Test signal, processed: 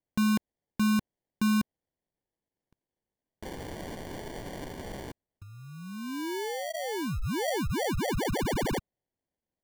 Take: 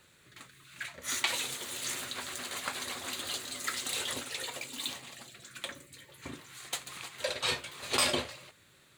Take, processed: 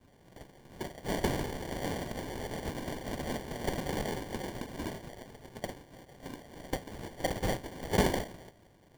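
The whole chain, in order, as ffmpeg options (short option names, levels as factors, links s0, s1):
-filter_complex "[0:a]adynamicequalizer=threshold=0.00501:dfrequency=590:dqfactor=0.96:tfrequency=590:tqfactor=0.96:attack=5:release=100:ratio=0.375:range=3:mode=cutabove:tftype=bell,acrossover=split=280[s0][s1];[s0]acompressor=threshold=0.00355:ratio=12[s2];[s2][s1]amix=inputs=2:normalize=0,acrusher=samples=34:mix=1:aa=0.000001,volume=1.19"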